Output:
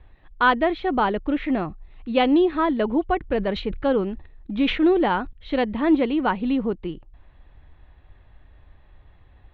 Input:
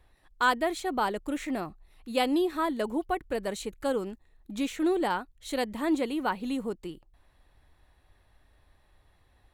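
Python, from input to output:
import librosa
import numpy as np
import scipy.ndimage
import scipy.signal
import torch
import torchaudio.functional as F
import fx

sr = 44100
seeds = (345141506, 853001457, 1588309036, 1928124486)

y = scipy.signal.sosfilt(scipy.signal.butter(6, 3500.0, 'lowpass', fs=sr, output='sos'), x)
y = fx.low_shelf(y, sr, hz=230.0, db=7.5)
y = fx.sustainer(y, sr, db_per_s=100.0, at=(3.2, 5.33))
y = y * 10.0 ** (6.0 / 20.0)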